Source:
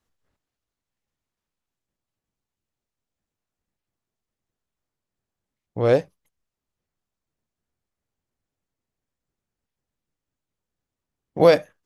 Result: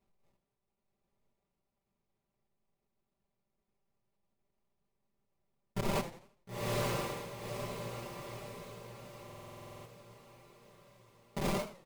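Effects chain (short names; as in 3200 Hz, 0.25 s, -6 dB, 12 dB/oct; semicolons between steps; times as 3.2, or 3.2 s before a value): block floating point 3-bit; dynamic EQ 4000 Hz, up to +7 dB, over -35 dBFS, Q 0.75; limiter -13.5 dBFS, peak gain reduction 13 dB; sample-rate reducer 1600 Hz, jitter 20%; diffused feedback echo 0.958 s, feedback 48%, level -5 dB; wavefolder -25.5 dBFS; bell 110 Hz +14 dB 0.28 oct; comb 5.1 ms, depth 92%; stuck buffer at 9.25, samples 2048, times 12; warbling echo 84 ms, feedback 36%, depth 213 cents, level -13 dB; gain -4.5 dB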